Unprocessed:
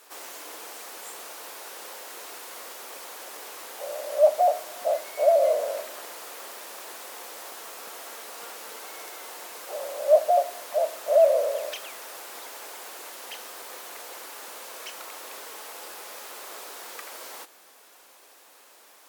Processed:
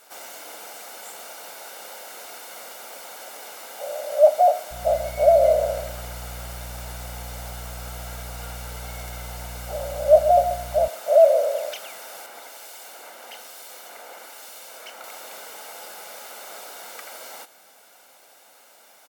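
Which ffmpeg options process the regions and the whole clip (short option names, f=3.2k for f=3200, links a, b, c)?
-filter_complex "[0:a]asettb=1/sr,asplit=3[a][b][c];[a]atrim=end=4.714[d];[b]atrim=start=4.71:end=10.88,asetpts=PTS-STARTPTS,afade=t=in:d=0.004:c=qsin,afade=t=out:st=6.166:d=0.004:c=qsin,aeval=exprs='val(0)+0.00447*(sin(2*PI*60*n/s)+sin(2*PI*2*60*n/s)/2+sin(2*PI*3*60*n/s)/3+sin(2*PI*4*60*n/s)/4+sin(2*PI*5*60*n/s)/5)':c=same,aecho=1:1:134|268|402:0.299|0.0627|0.0132,atrim=end_sample=272097[e];[c]atrim=start=10.876[f];[d][e]acrossfade=d=0.004:c1=hsin:c2=qsin[g];[g][f]acrossfade=d=0.004:c1=qsin:c2=hsin,asettb=1/sr,asplit=3[h][i][j];[h]atrim=end=12.264[k];[i]atrim=start=12.26:end=15.04,asetpts=PTS-STARTPTS,afade=t=in:d=0.004:c=qsin,afade=t=out:st=2.776:d=0.004:c=qsin,highpass=f=180:w=0.5412,highpass=f=180:w=1.3066,acrossover=split=2500[l][m];[l]aeval=exprs='val(0)*(1-0.5/2+0.5/2*cos(2*PI*1.1*n/s))':c=same[n];[m]aeval=exprs='val(0)*(1-0.5/2-0.5/2*cos(2*PI*1.1*n/s))':c=same[o];[n][o]amix=inputs=2:normalize=0[p];[j]atrim=start=15.036[q];[k][p]acrossfade=d=0.004:c1=hsin:c2=qsin[r];[r][q]acrossfade=d=0.004:c1=qsin:c2=hsin,lowshelf=f=280:g=7,aecho=1:1:1.4:0.51"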